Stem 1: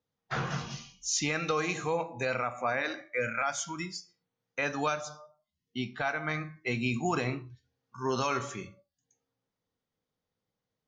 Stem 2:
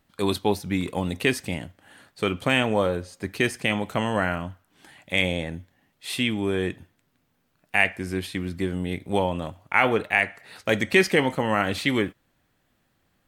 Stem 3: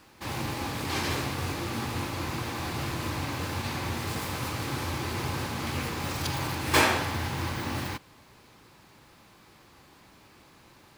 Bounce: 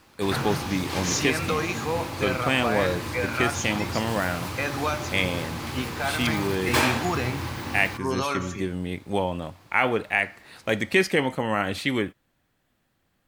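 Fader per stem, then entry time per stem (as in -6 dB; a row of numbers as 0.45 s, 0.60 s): +2.5 dB, -2.0 dB, -0.5 dB; 0.00 s, 0.00 s, 0.00 s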